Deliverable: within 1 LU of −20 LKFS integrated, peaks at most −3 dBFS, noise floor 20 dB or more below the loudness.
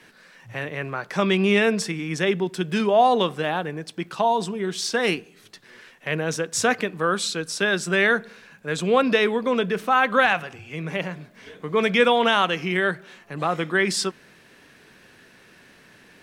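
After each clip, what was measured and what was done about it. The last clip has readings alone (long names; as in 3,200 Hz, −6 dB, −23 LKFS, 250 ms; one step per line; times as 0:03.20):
crackle rate 34 per second; integrated loudness −22.5 LKFS; sample peak −6.0 dBFS; target loudness −20.0 LKFS
→ click removal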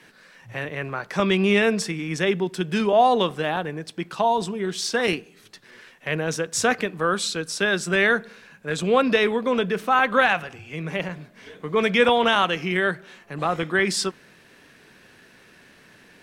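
crackle rate 0.18 per second; integrated loudness −22.5 LKFS; sample peak −6.0 dBFS; target loudness −20.0 LKFS
→ level +2.5 dB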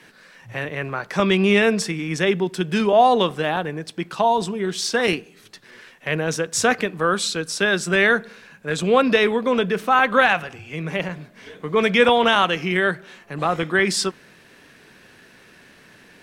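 integrated loudness −20.0 LKFS; sample peak −3.5 dBFS; background noise floor −50 dBFS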